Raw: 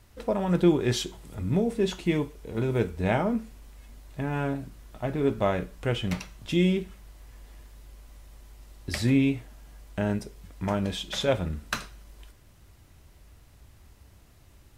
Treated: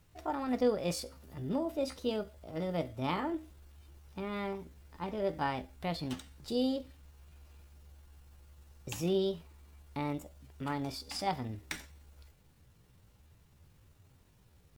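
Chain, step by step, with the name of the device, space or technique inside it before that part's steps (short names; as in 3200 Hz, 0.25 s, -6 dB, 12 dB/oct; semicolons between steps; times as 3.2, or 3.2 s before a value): chipmunk voice (pitch shift +6 st); gain -8.5 dB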